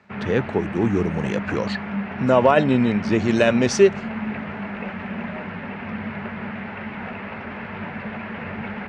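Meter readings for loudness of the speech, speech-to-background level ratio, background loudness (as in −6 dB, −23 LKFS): −20.5 LKFS, 10.0 dB, −30.5 LKFS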